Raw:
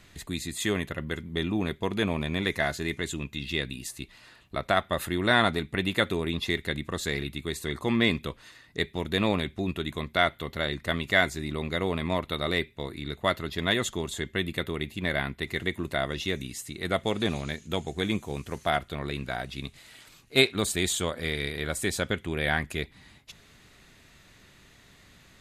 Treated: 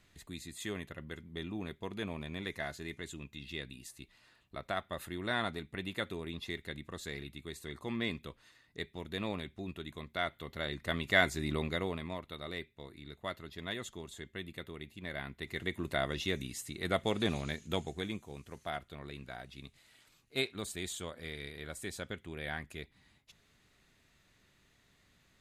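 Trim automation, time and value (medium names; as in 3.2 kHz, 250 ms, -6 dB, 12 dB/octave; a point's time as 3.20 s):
10.14 s -12 dB
11.54 s -1.5 dB
12.19 s -14 dB
15.03 s -14 dB
15.91 s -4.5 dB
17.79 s -4.5 dB
18.19 s -13 dB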